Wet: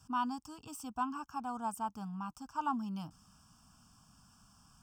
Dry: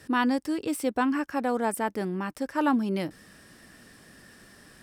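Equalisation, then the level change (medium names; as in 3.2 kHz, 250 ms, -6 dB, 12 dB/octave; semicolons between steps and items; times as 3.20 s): static phaser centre 880 Hz, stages 4; static phaser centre 2.7 kHz, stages 8; -4.0 dB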